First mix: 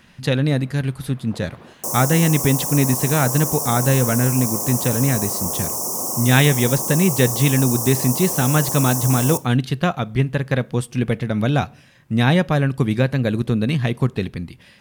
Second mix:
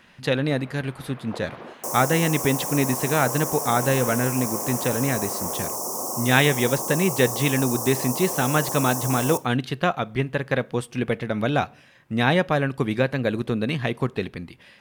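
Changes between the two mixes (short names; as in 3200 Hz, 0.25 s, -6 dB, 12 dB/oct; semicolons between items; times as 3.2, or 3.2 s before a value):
first sound +6.5 dB; master: add tone controls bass -9 dB, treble -6 dB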